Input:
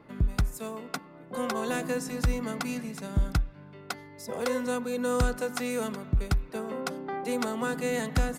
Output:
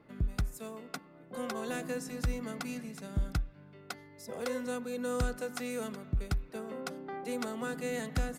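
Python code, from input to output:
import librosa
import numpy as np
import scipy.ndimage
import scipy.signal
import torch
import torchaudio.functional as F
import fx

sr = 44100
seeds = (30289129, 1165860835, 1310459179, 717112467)

y = fx.peak_eq(x, sr, hz=970.0, db=-4.5, octaves=0.37)
y = y * 10.0 ** (-6.0 / 20.0)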